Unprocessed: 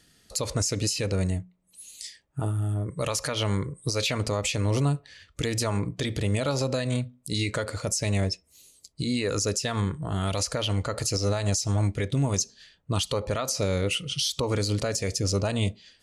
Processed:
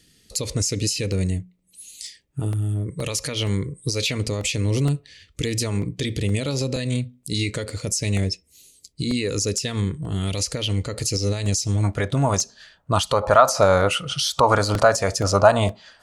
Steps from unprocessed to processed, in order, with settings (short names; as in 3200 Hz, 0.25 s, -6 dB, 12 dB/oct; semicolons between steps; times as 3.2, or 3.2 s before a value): band shelf 970 Hz -9.5 dB, from 11.83 s +9.5 dB, from 13.22 s +15.5 dB; crackling interface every 0.47 s, samples 64, repeat, from 0.65; gain +3.5 dB